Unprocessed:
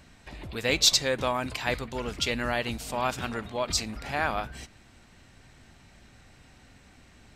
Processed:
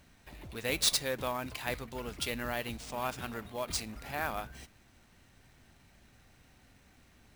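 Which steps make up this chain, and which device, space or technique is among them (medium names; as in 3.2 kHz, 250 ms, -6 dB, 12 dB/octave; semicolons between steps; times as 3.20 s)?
early companding sampler (sample-rate reducer 14 kHz, jitter 0%; companded quantiser 6-bit); trim -7 dB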